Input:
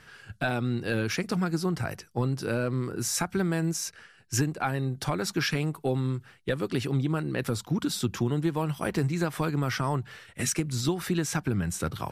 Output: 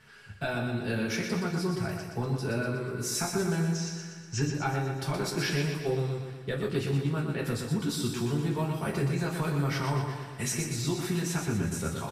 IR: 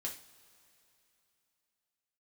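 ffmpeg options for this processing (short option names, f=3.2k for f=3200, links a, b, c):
-filter_complex "[0:a]asettb=1/sr,asplit=3[a][b][c];[a]atrim=end=3.634[d];[b]atrim=start=3.63:end=4.42,asetpts=PTS-STARTPTS,afade=t=in:d=0.004:c=qsin,afade=t=out:st=0.786:d=0.004:c=qsin,lowpass=f=6.2k:w=0.5412,lowpass=f=6.2k:w=1.3066[e];[c]atrim=start=4.416[f];[d][e]acrossfade=d=0.004:c1=hsin:c2=qsin[g];[g][f]acrossfade=d=0.004:c1=qsin:c2=hsin,aecho=1:1:121|242|363|484|605|726|847:0.501|0.286|0.163|0.0928|0.0529|0.0302|0.0172[h];[1:a]atrim=start_sample=2205,asetrate=57330,aresample=44100[i];[h][i]afir=irnorm=-1:irlink=0"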